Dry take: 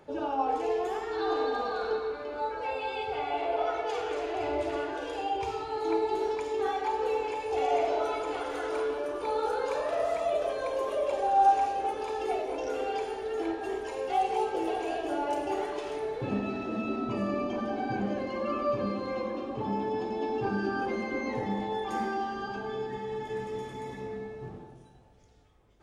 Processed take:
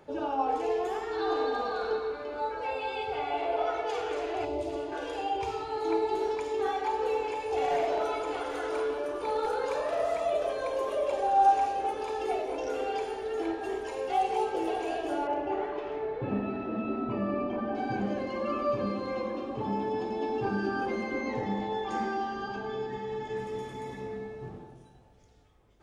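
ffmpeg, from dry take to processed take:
-filter_complex "[0:a]asettb=1/sr,asplit=3[a][b][c];[a]atrim=end=4.454[d];[b]atrim=start=4.45:end=4.92,asetpts=PTS-STARTPTS,afade=t=in:d=0.004:c=qsin,afade=t=out:st=0.466:d=0.004:c=qsin,equalizer=f=1.6k:w=0.95:g=-13[e];[c]atrim=start=4.916[f];[d][e]acrossfade=d=0.004:c1=hsin:c2=qsin[g];[g][f]acrossfade=d=0.004:c1=qsin:c2=hsin,asettb=1/sr,asplit=3[h][i][j];[h]atrim=end=7.624[k];[i]atrim=start=7.62:end=10,asetpts=PTS-STARTPTS,afade=t=in:d=0.004:c=qsin,afade=t=out:st=2.376:d=0.004:c=qsin,asoftclip=type=hard:threshold=-23dB[l];[j]atrim=start=9.996[m];[k][l]acrossfade=d=0.004:c1=hsin:c2=qsin[n];[n][m]acrossfade=d=0.004:c1=qsin:c2=hsin,asettb=1/sr,asplit=3[o][p][q];[o]atrim=end=15.274[r];[p]atrim=start=15.27:end=17.75,asetpts=PTS-STARTPTS,afade=t=in:d=0.004:c=qsin,afade=t=out:st=2.476:d=0.004:c=qsin,lowpass=2.3k[s];[q]atrim=start=17.746[t];[r][s]acrossfade=d=0.004:c1=hsin:c2=qsin[u];[u][t]acrossfade=d=0.004:c1=qsin:c2=hsin,asettb=1/sr,asplit=3[v][w][x];[v]atrim=end=21.224[y];[w]atrim=start=21.22:end=23.38,asetpts=PTS-STARTPTS,afade=t=in:d=0.004:c=qsin,afade=t=out:st=2.156:d=0.004:c=qsin,lowpass=f=7.7k:w=0.5412,lowpass=f=7.7k:w=1.3066[z];[x]atrim=start=23.376[aa];[y][z]acrossfade=d=0.004:c1=hsin:c2=qsin[ab];[ab][aa]acrossfade=d=0.004:c1=qsin:c2=hsin"

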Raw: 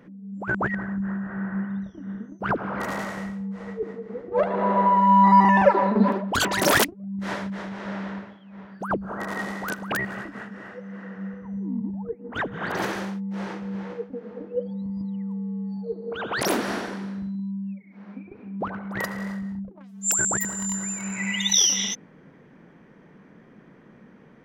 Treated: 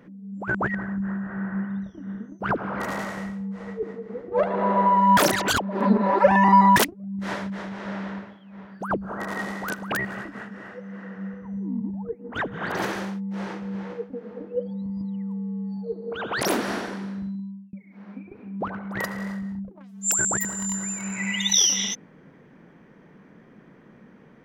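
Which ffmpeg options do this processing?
-filter_complex "[0:a]asplit=4[a][b][c][d];[a]atrim=end=5.172[e];[b]atrim=start=5.168:end=6.762,asetpts=PTS-STARTPTS,areverse[f];[c]atrim=start=6.758:end=17.73,asetpts=PTS-STARTPTS,afade=t=out:st=10.532:d=0.44[g];[d]atrim=start=17.73,asetpts=PTS-STARTPTS,afade=t=in:d=0.004:c=hsin[h];[e][f]acrossfade=d=0.004:c1=hsin:c2=hsin[i];[g][h]concat=n=2:v=0:a=1[j];[i][j]acrossfade=d=0.004:c1=hsin:c2=hsin"

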